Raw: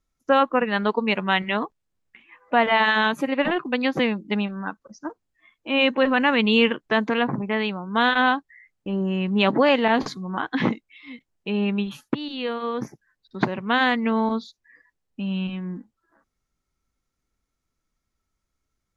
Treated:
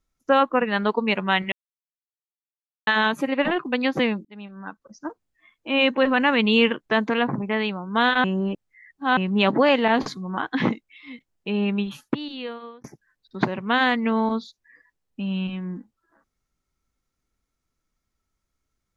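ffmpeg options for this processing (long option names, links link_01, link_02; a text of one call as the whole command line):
ffmpeg -i in.wav -filter_complex "[0:a]asplit=7[link_01][link_02][link_03][link_04][link_05][link_06][link_07];[link_01]atrim=end=1.52,asetpts=PTS-STARTPTS,afade=type=out:start_time=1.516:duration=0.004:curve=hsin[link_08];[link_02]atrim=start=1.52:end=2.87,asetpts=PTS-STARTPTS,volume=0[link_09];[link_03]atrim=start=2.87:end=4.25,asetpts=PTS-STARTPTS,afade=type=in:duration=0.004:curve=hsin,afade=type=out:start_time=1.376:duration=0.004:curve=hsin[link_10];[link_04]atrim=start=4.25:end=8.242,asetpts=PTS-STARTPTS,afade=type=in:duration=0.82[link_11];[link_05]atrim=start=8.238:end=9.172,asetpts=PTS-STARTPTS,areverse[link_12];[link_06]atrim=start=9.168:end=12.84,asetpts=PTS-STARTPTS,afade=type=out:start_time=2.992:duration=0.68[link_13];[link_07]atrim=start=12.84,asetpts=PTS-STARTPTS,afade=type=in:duration=0.004:curve=hsin[link_14];[link_08][link_09][link_10][link_11]concat=n=4:v=0:a=1[link_15];[link_15][link_12]acrossfade=duration=0.004:curve1=hsin:curve2=hsin[link_16];[link_13][link_14]concat=n=2:v=0:a=1[link_17];[link_16][link_17]acrossfade=duration=0.004:curve1=hsin:curve2=hsin" out.wav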